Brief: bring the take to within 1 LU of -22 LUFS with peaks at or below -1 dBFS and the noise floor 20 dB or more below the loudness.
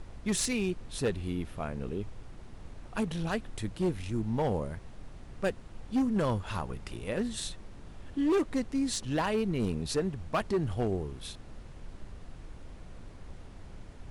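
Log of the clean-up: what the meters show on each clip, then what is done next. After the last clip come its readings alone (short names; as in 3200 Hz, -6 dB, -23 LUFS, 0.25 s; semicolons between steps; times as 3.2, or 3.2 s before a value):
clipped 1.4%; flat tops at -23.0 dBFS; noise floor -49 dBFS; noise floor target -53 dBFS; loudness -32.5 LUFS; peak -23.0 dBFS; loudness target -22.0 LUFS
-> clip repair -23 dBFS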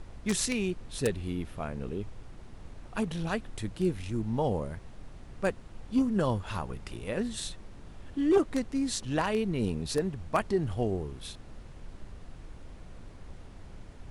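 clipped 0.0%; noise floor -49 dBFS; noise floor target -52 dBFS
-> noise print and reduce 6 dB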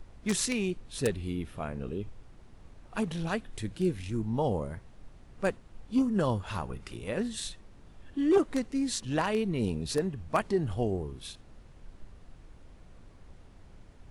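noise floor -54 dBFS; loudness -31.5 LUFS; peak -14.0 dBFS; loudness target -22.0 LUFS
-> gain +9.5 dB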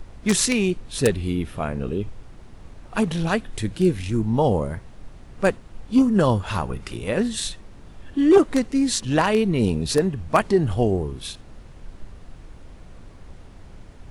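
loudness -22.0 LUFS; peak -4.5 dBFS; noise floor -45 dBFS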